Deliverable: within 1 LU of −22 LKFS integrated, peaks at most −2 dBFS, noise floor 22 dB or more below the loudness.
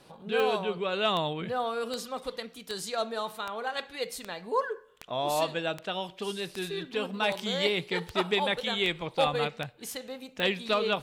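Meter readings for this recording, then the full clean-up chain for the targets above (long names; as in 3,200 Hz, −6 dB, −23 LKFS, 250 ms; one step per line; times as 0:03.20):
number of clicks 14; integrated loudness −30.5 LKFS; sample peak −14.0 dBFS; target loudness −22.0 LKFS
→ click removal
level +8.5 dB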